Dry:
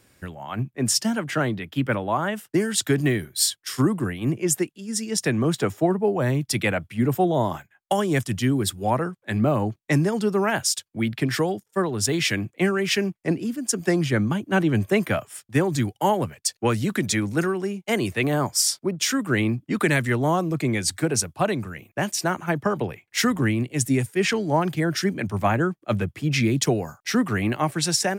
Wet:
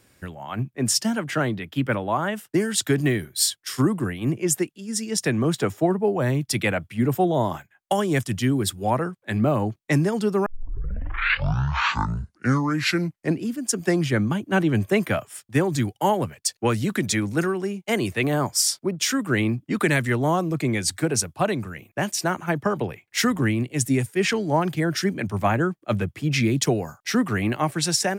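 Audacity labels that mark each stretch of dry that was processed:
10.460000	10.460000	tape start 2.93 s

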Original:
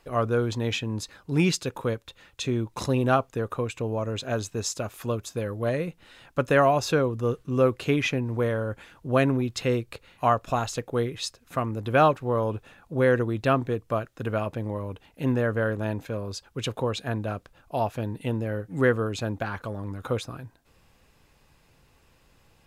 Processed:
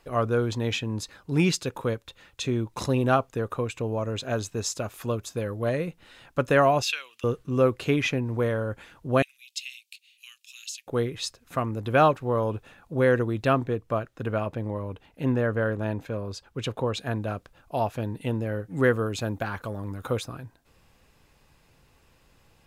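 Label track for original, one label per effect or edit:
6.820000	7.240000	resonant high-pass 2.7 kHz, resonance Q 3.8
9.220000	10.870000	elliptic high-pass 2.6 kHz, stop band 70 dB
13.640000	16.940000	treble shelf 4.3 kHz -6 dB
18.840000	20.280000	treble shelf 12 kHz +10.5 dB

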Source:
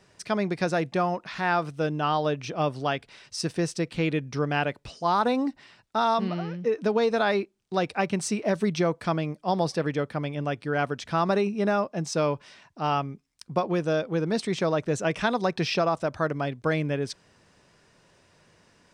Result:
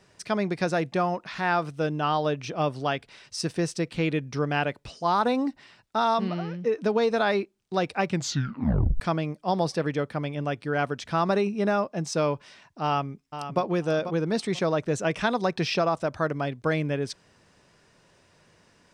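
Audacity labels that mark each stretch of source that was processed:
8.070000	8.070000	tape stop 0.93 s
12.830000	13.610000	echo throw 490 ms, feedback 20%, level -10 dB

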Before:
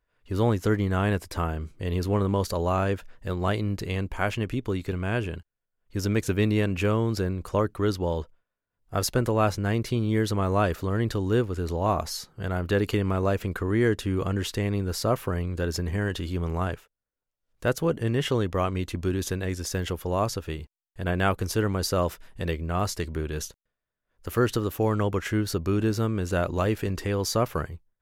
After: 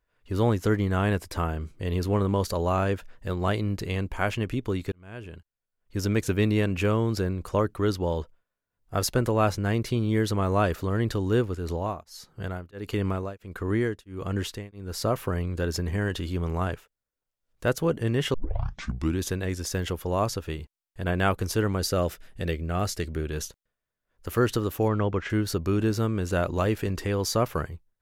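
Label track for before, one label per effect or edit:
4.920000	5.990000	fade in
11.550000	15.150000	tremolo triangle 1.5 Hz, depth 100%
18.340000	18.340000	tape start 0.85 s
21.790000	23.300000	peaking EQ 990 Hz -9 dB 0.33 oct
24.880000	25.300000	distance through air 150 m

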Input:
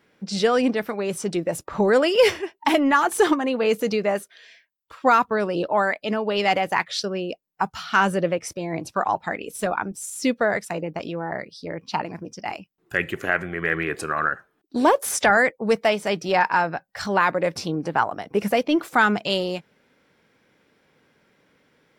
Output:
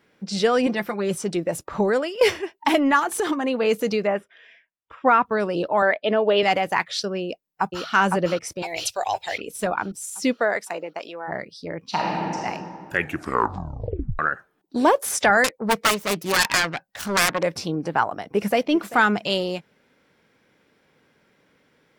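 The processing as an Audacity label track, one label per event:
0.660000	1.150000	comb 5.7 ms
1.770000	2.210000	fade out, to -18 dB
2.990000	3.460000	compression, threshold -19 dBFS
4.070000	5.260000	Savitzky-Golay filter over 25 samples
5.820000	6.430000	cabinet simulation 160–3800 Hz, peaks and dips at 430 Hz +5 dB, 630 Hz +8 dB, 1.7 kHz +3 dB, 3.4 kHz +8 dB
7.210000	7.870000	echo throw 510 ms, feedback 50%, level -2.5 dB
8.620000	9.380000	FFT filter 100 Hz 0 dB, 200 Hz -26 dB, 430 Hz -4 dB, 740 Hz +1 dB, 1.3 kHz -15 dB, 2.6 kHz +13 dB
10.320000	11.270000	high-pass 280 Hz -> 630 Hz
11.870000	12.430000	reverb throw, RT60 2.4 s, DRR -3.5 dB
12.980000	12.980000	tape stop 1.21 s
15.440000	17.430000	self-modulated delay depth 0.95 ms
18.190000	18.610000	echo throw 390 ms, feedback 20%, level -16.5 dB

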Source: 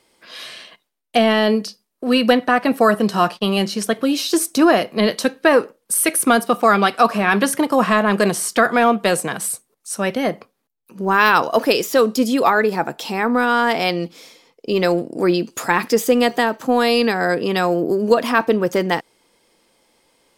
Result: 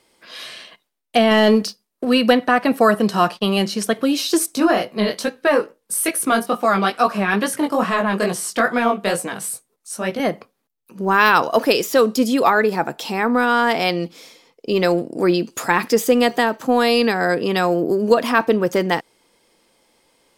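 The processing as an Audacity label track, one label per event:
1.310000	2.050000	waveshaping leveller passes 1
4.460000	10.200000	chorus 2.3 Hz, delay 16 ms, depth 5.5 ms

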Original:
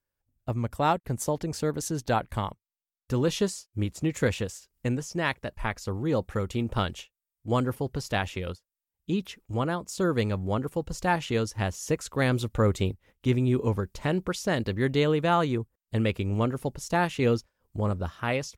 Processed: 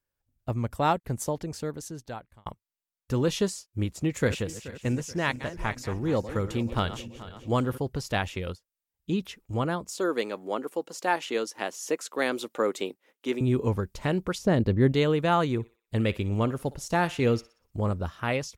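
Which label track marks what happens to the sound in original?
1.030000	2.460000	fade out
4.070000	7.780000	backward echo that repeats 215 ms, feedback 65%, level -13 dB
9.900000	13.410000	high-pass 280 Hz 24 dB/octave
14.380000	14.920000	tilt shelf lows +6.5 dB, about 890 Hz
15.500000	17.890000	thinning echo 61 ms, feedback 46%, high-pass 580 Hz, level -18 dB

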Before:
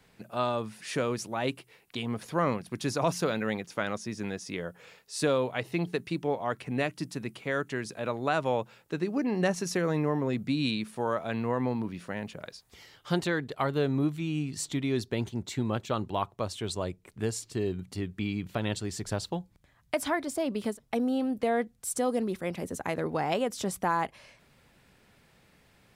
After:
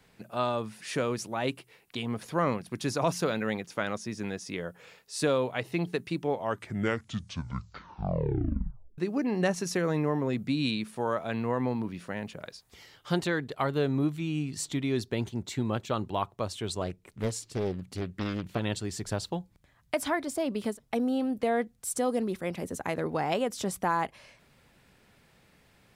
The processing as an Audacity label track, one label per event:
6.300000	6.300000	tape stop 2.68 s
16.810000	18.600000	loudspeaker Doppler distortion depth 0.66 ms

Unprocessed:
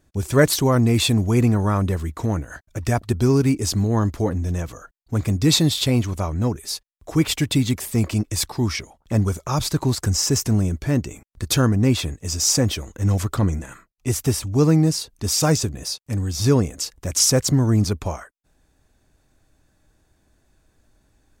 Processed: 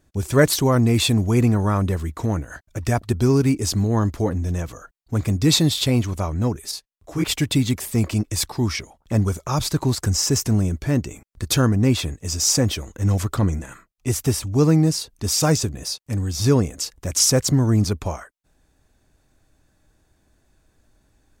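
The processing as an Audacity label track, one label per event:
6.710000	7.240000	detune thickener each way 56 cents

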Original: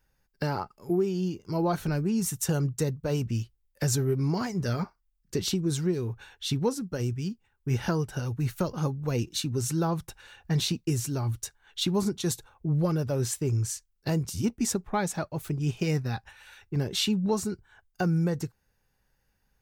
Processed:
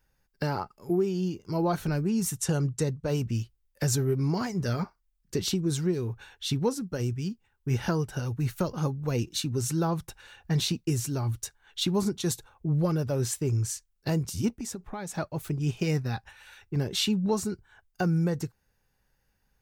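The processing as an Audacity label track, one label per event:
2.360000	3.080000	low-pass 11 kHz 24 dB/octave
14.520000	15.150000	compression 5:1, threshold -33 dBFS

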